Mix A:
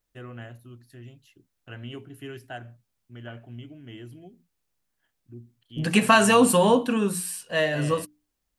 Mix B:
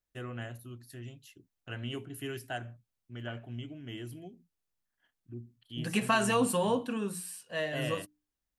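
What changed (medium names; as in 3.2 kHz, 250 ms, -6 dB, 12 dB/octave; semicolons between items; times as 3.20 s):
first voice: add treble shelf 5.1 kHz +9.5 dB; second voice -10.0 dB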